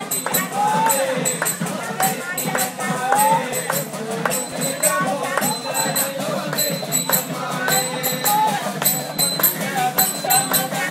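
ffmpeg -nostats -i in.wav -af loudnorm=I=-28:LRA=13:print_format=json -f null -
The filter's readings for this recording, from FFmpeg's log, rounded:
"input_i" : "-18.9",
"input_tp" : "-2.5",
"input_lra" : "2.6",
"input_thresh" : "-28.9",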